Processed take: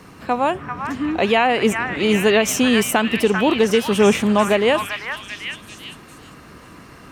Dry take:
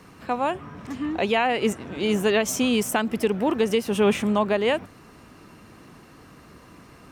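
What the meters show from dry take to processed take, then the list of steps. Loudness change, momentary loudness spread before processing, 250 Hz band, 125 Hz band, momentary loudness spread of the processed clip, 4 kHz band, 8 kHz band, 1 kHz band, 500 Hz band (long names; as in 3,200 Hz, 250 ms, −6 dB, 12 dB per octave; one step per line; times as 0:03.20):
+5.5 dB, 8 LU, +5.5 dB, +5.5 dB, 14 LU, +7.0 dB, +6.0 dB, +6.0 dB, +5.5 dB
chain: echo through a band-pass that steps 393 ms, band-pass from 1,500 Hz, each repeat 0.7 octaves, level −1 dB
level +5.5 dB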